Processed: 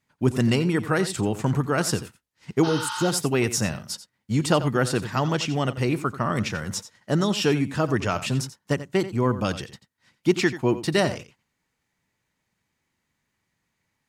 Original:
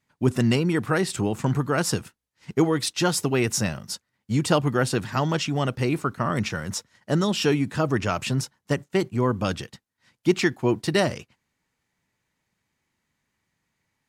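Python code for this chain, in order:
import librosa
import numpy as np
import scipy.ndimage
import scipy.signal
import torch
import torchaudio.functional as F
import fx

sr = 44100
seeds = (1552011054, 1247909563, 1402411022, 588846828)

p1 = x + fx.echo_single(x, sr, ms=88, db=-14.0, dry=0)
y = fx.spec_repair(p1, sr, seeds[0], start_s=2.66, length_s=0.4, low_hz=840.0, high_hz=6400.0, source='after')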